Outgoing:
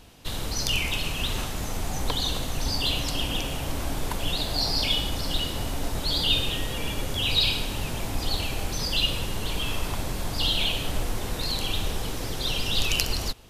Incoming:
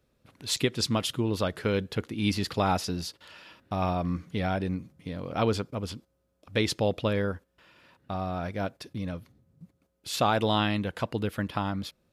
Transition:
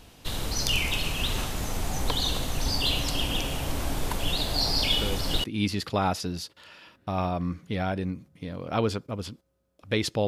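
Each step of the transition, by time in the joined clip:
outgoing
4.87 add incoming from 1.51 s 0.57 s -7 dB
5.44 switch to incoming from 2.08 s

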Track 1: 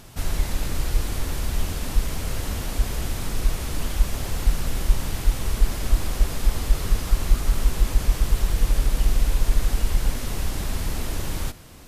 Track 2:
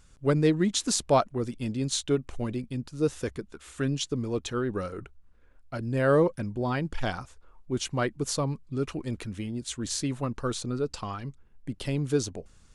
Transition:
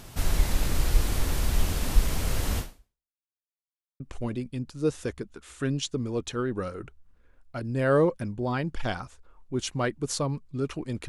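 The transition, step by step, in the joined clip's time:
track 1
2.59–3.16 fade out exponential
3.16–4 mute
4 switch to track 2 from 2.18 s

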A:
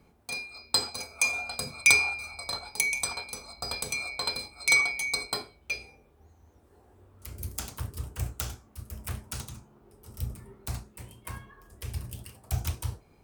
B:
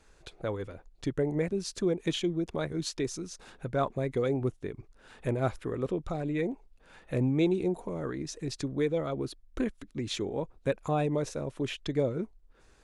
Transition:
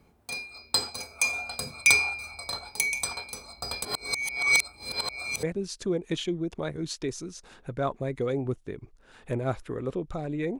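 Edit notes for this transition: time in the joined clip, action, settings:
A
3.85–5.43 reverse
5.43 switch to B from 1.39 s

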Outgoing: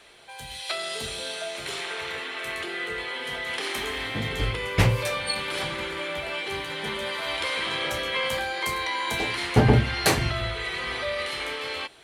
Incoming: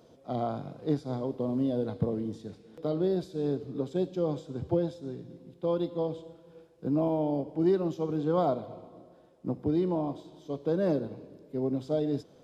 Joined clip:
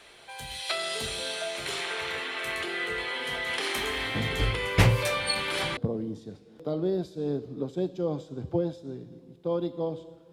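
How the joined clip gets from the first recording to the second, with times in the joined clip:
outgoing
5.77 switch to incoming from 1.95 s

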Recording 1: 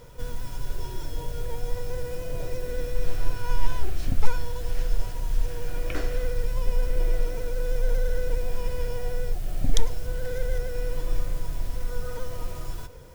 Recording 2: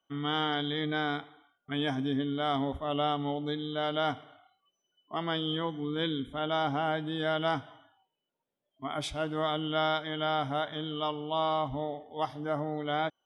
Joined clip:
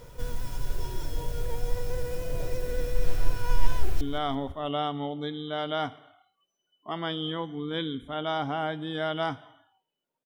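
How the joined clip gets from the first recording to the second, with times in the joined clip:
recording 1
3.73–4.01 echo throw 0.17 s, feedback 45%, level -14.5 dB
4.01 switch to recording 2 from 2.26 s

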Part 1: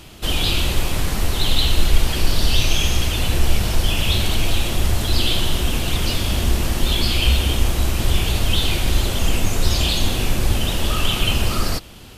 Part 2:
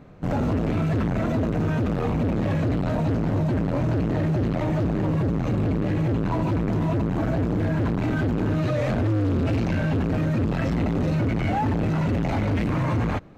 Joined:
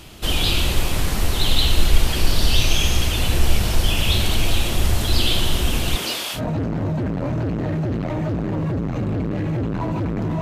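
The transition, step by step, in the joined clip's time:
part 1
5.95–6.41 HPF 190 Hz -> 1000 Hz
6.37 switch to part 2 from 2.88 s, crossfade 0.08 s

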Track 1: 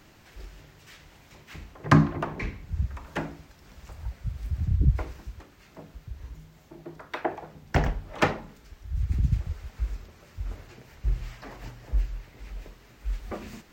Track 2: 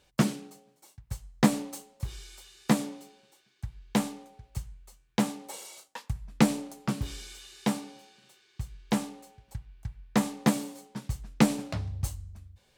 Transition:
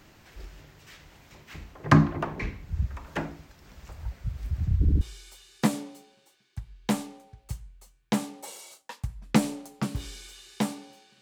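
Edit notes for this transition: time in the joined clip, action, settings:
track 1
4.8 stutter in place 0.07 s, 3 plays
5.01 switch to track 2 from 2.07 s

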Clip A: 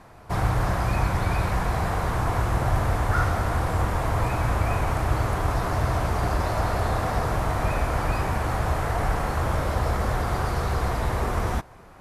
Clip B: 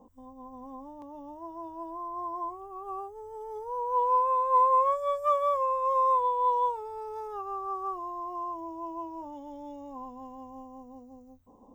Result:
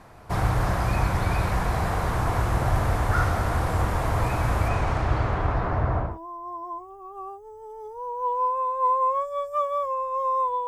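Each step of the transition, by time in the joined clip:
clip A
4.68–6.19 LPF 8400 Hz -> 1000 Hz
6.09 switch to clip B from 1.8 s, crossfade 0.20 s

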